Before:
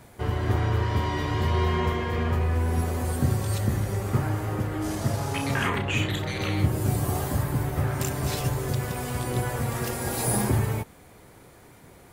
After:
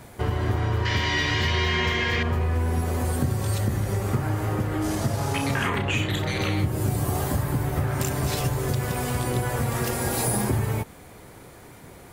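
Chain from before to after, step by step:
0:00.85–0:02.23: flat-topped bell 3,300 Hz +12.5 dB 2.3 octaves
downward compressor 3 to 1, threshold −27 dBFS, peak gain reduction 8.5 dB
level +5 dB

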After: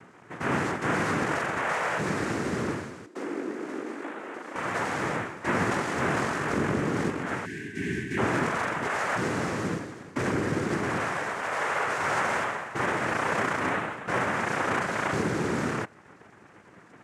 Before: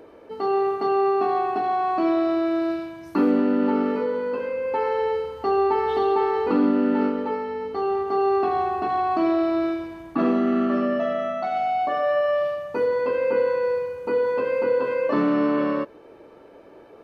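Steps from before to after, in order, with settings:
wavefolder on the positive side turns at −20 dBFS
cochlear-implant simulation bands 3
0:03.06–0:04.56: four-pole ladder high-pass 260 Hz, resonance 50%
0:07.46–0:08.18: gain on a spectral selection 440–1,500 Hz −27 dB
level −4.5 dB

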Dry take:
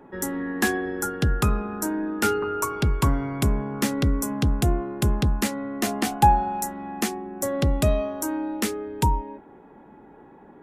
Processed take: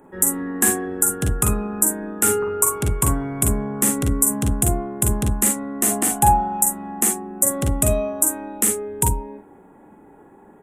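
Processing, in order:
high shelf with overshoot 6,400 Hz +11 dB, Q 3
ambience of single reflections 43 ms −5.5 dB, 53 ms −7 dB
level −1 dB

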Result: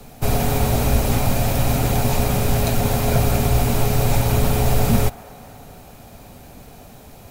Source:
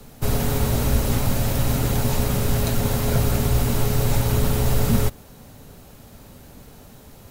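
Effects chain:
hollow resonant body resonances 720/2,400 Hz, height 8 dB, ringing for 20 ms
on a send: delay with a band-pass on its return 248 ms, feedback 65%, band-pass 1,000 Hz, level −18 dB
on the sum: level +2 dB

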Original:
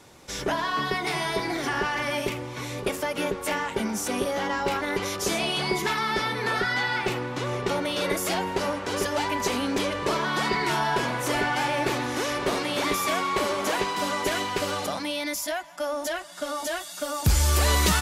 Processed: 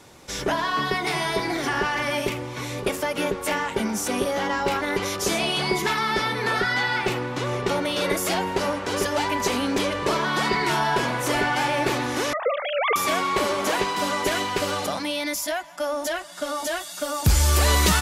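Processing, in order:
0:12.33–0:12.96: three sine waves on the formant tracks
level +2.5 dB

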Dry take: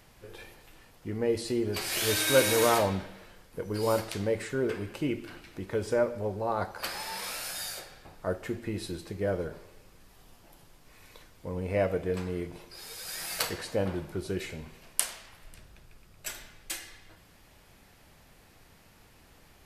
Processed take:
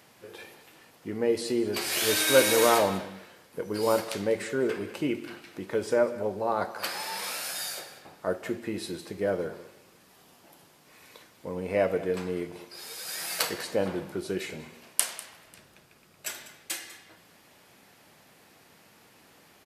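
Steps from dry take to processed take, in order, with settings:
high-pass filter 180 Hz 12 dB per octave
on a send: single-tap delay 197 ms −17 dB
on the sum: level +2.5 dB

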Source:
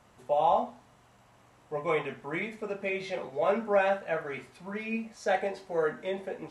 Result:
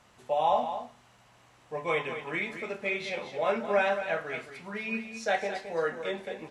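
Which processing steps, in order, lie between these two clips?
parametric band 3,800 Hz +7 dB 2.9 octaves
single-tap delay 218 ms −9.5 dB
level −2.5 dB

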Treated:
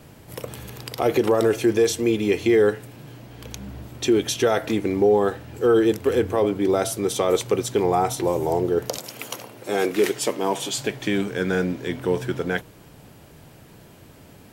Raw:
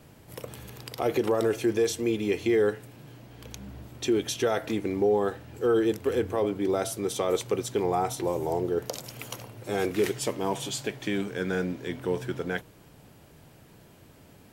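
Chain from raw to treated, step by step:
0:08.98–0:10.77: high-pass filter 220 Hz 12 dB per octave
level +6 dB

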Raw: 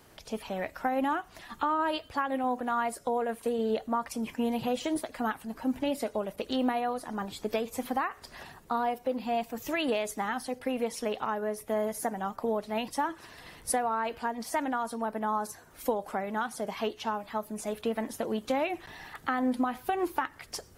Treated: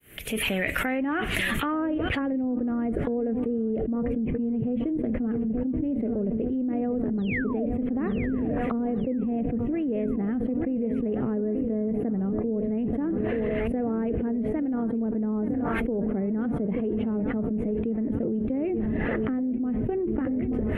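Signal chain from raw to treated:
fade in at the beginning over 5.03 s
sound drawn into the spectrogram fall, 0:07.18–0:07.66, 550–4,300 Hz −25 dBFS
drawn EQ curve 190 Hz 0 dB, 450 Hz −2 dB, 920 Hz −16 dB, 2,100 Hz +6 dB, 3,000 Hz +3 dB, 5,000 Hz −19 dB, 11,000 Hz +8 dB
feedback echo with a low-pass in the loop 882 ms, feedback 69%, low-pass 3,000 Hz, level −15 dB
treble cut that deepens with the level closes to 360 Hz, closed at −38 dBFS
envelope flattener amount 100%

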